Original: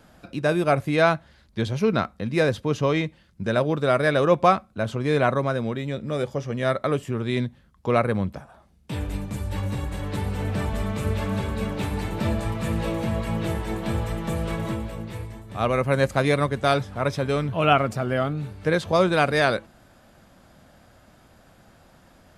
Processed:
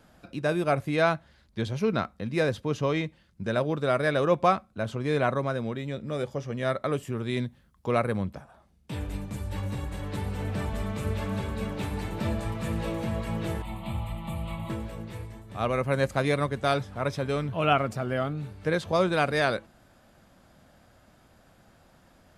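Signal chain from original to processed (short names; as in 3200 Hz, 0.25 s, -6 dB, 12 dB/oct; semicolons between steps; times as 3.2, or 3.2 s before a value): 6.93–8.23 high shelf 9800 Hz +9 dB; 13.62–14.7 fixed phaser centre 1600 Hz, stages 6; gain -4.5 dB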